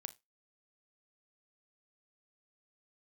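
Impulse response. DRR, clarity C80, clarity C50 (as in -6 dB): 12.0 dB, 29.0 dB, 19.5 dB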